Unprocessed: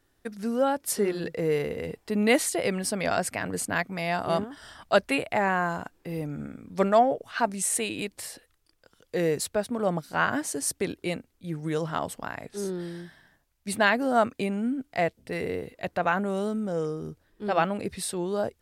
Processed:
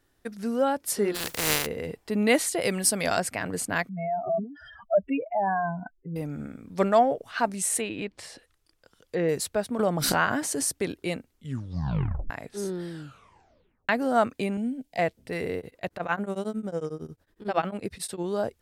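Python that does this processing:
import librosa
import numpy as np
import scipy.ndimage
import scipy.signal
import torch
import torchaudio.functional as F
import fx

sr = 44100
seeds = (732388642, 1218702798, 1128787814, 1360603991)

y = fx.spec_flatten(x, sr, power=0.26, at=(1.14, 1.65), fade=0.02)
y = fx.peak_eq(y, sr, hz=12000.0, db=10.5, octaves=1.9, at=(2.61, 3.2))
y = fx.spec_expand(y, sr, power=3.7, at=(3.89, 6.16))
y = fx.env_lowpass_down(y, sr, base_hz=2600.0, full_db=-28.5, at=(7.8, 9.29))
y = fx.pre_swell(y, sr, db_per_s=22.0, at=(9.79, 10.7))
y = fx.fixed_phaser(y, sr, hz=340.0, stages=6, at=(14.57, 14.99))
y = fx.tremolo_abs(y, sr, hz=11.0, at=(15.58, 18.24))
y = fx.edit(y, sr, fx.tape_stop(start_s=11.32, length_s=0.98),
    fx.tape_stop(start_s=12.9, length_s=0.99), tone=tone)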